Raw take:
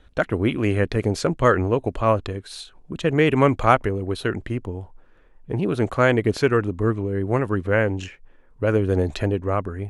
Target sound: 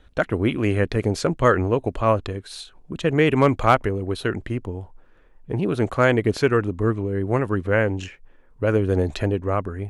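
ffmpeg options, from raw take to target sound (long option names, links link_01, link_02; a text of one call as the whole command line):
ffmpeg -i in.wav -af "asoftclip=type=hard:threshold=-5.5dB" out.wav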